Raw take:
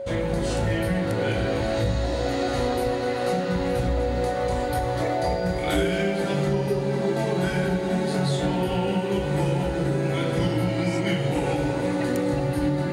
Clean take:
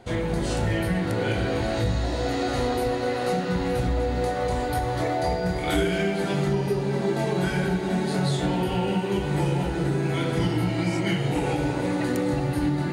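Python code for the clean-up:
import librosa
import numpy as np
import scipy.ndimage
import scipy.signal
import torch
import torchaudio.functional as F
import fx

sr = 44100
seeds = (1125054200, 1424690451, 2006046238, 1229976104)

y = fx.notch(x, sr, hz=550.0, q=30.0)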